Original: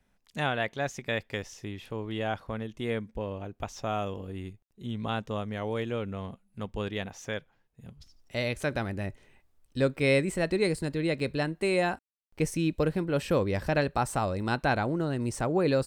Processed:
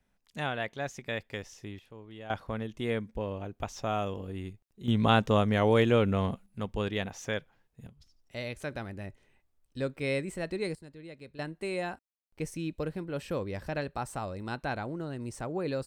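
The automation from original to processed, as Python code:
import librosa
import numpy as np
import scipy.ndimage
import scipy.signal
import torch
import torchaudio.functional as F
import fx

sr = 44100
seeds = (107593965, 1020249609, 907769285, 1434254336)

y = fx.gain(x, sr, db=fx.steps((0.0, -4.0), (1.79, -13.0), (2.3, 0.0), (4.88, 8.5), (6.46, 1.5), (7.87, -7.0), (10.75, -18.0), (11.39, -7.5)))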